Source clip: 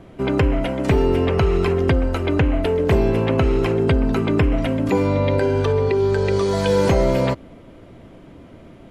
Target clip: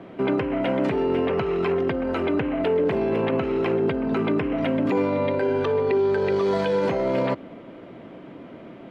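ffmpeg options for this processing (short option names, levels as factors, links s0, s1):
-filter_complex "[0:a]alimiter=limit=0.133:level=0:latency=1:release=19,acrossover=split=150 3800:gain=0.0794 1 0.126[s0][s1][s2];[s0][s1][s2]amix=inputs=3:normalize=0,volume=1.5"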